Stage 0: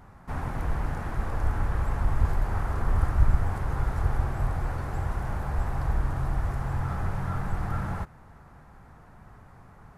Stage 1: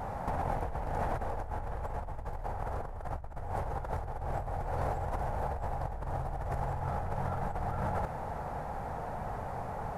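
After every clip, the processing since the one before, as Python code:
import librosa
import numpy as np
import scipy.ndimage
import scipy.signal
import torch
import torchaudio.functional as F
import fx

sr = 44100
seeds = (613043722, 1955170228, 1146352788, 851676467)

y = fx.band_shelf(x, sr, hz=640.0, db=10.5, octaves=1.2)
y = fx.over_compress(y, sr, threshold_db=-35.0, ratio=-1.0)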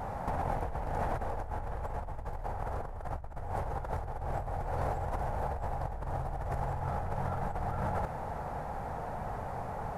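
y = x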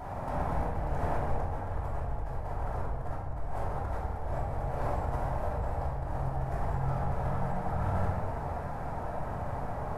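y = fx.room_shoebox(x, sr, seeds[0], volume_m3=760.0, walls='mixed', distance_m=2.9)
y = F.gain(torch.from_numpy(y), -5.5).numpy()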